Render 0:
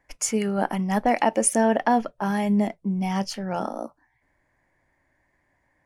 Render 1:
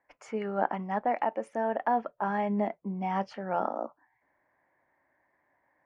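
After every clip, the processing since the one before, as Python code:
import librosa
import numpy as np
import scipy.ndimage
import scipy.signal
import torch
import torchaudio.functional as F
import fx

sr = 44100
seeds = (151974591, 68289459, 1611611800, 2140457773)

y = fx.highpass(x, sr, hz=860.0, slope=6)
y = fx.rider(y, sr, range_db=4, speed_s=0.5)
y = scipy.signal.sosfilt(scipy.signal.butter(2, 1300.0, 'lowpass', fs=sr, output='sos'), y)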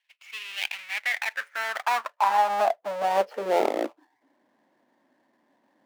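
y = fx.halfwave_hold(x, sr)
y = fx.high_shelf(y, sr, hz=3700.0, db=-12.0)
y = fx.filter_sweep_highpass(y, sr, from_hz=2700.0, to_hz=230.0, start_s=0.61, end_s=4.49, q=4.3)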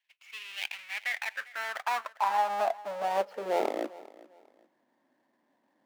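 y = fx.echo_feedback(x, sr, ms=400, feedback_pct=28, wet_db=-20)
y = F.gain(torch.from_numpy(y), -5.5).numpy()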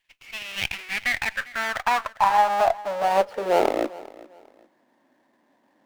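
y = fx.running_max(x, sr, window=3)
y = F.gain(torch.from_numpy(y), 8.5).numpy()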